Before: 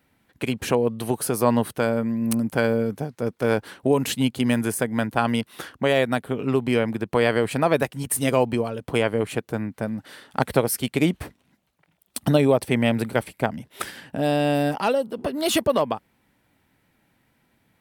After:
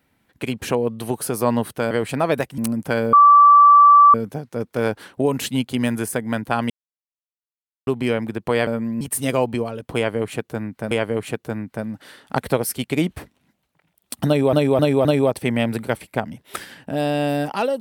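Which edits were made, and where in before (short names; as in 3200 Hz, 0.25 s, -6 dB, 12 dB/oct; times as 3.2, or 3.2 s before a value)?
1.91–2.25 swap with 7.33–8
2.8 add tone 1160 Hz -6.5 dBFS 1.01 s
5.36–6.53 mute
8.95–9.9 loop, 2 plays
12.31–12.57 loop, 4 plays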